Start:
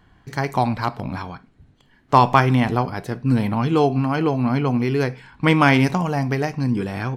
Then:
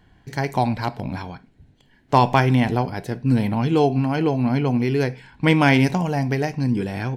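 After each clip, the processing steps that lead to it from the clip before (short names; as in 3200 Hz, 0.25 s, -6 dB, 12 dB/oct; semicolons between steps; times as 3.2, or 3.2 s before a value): bell 1200 Hz -11 dB 0.35 oct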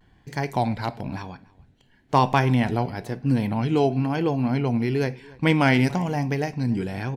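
vibrato 1 Hz 67 cents; outdoor echo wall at 49 m, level -23 dB; gain -3 dB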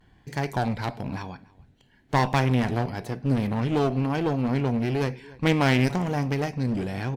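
one-sided clip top -26.5 dBFS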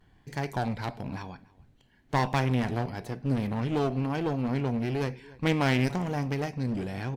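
added noise brown -62 dBFS; gain -4 dB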